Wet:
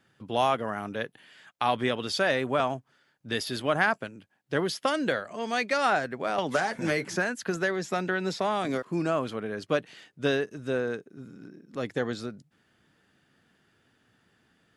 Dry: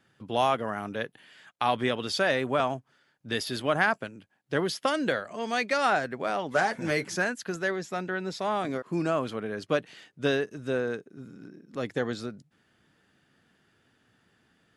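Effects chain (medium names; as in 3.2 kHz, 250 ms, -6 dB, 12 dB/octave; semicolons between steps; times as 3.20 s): 6.38–8.85 s: three bands compressed up and down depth 100%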